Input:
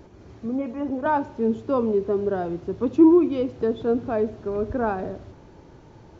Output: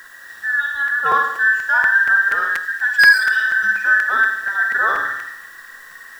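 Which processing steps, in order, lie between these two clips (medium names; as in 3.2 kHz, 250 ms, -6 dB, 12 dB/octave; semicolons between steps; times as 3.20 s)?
every band turned upside down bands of 2 kHz; bit crusher 10-bit; treble shelf 2.6 kHz +10 dB; overload inside the chain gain 9 dB; flutter echo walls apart 9.5 m, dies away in 0.75 s; 3.16–3.62 s: spectral replace 360–2300 Hz after; 2.65–3.84 s: graphic EQ 125/500/1000 Hz -4/-7/-5 dB; crackling interface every 0.24 s, samples 256, repeat, from 0.87 s; trim +3 dB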